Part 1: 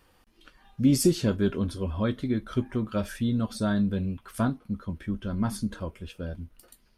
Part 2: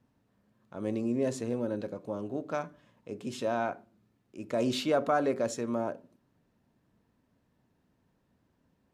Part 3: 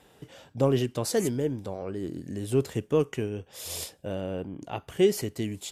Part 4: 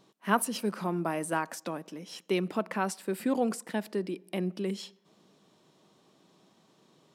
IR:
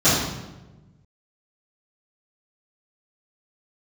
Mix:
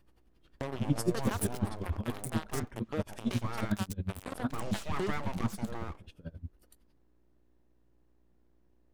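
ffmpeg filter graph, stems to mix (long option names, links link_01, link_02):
-filter_complex "[0:a]lowshelf=frequency=190:gain=9,flanger=delay=17.5:depth=7.3:speed=1.3,aeval=exprs='val(0)*pow(10,-28*(0.5-0.5*cos(2*PI*11*n/s))/20)':channel_layout=same,volume=-3.5dB[link_01];[1:a]aeval=exprs='val(0)+0.00126*(sin(2*PI*60*n/s)+sin(2*PI*2*60*n/s)/2+sin(2*PI*3*60*n/s)/3+sin(2*PI*4*60*n/s)/4+sin(2*PI*5*60*n/s)/5)':channel_layout=same,aeval=exprs='abs(val(0))':channel_layout=same,volume=-6.5dB[link_02];[2:a]volume=-4.5dB[link_03];[3:a]highshelf=frequency=3600:gain=12,adelay=1000,volume=-4.5dB[link_04];[link_03][link_04]amix=inputs=2:normalize=0,acrusher=bits=3:mix=0:aa=0.5,acompressor=threshold=-41dB:ratio=2,volume=0dB[link_05];[link_01][link_02][link_05]amix=inputs=3:normalize=0"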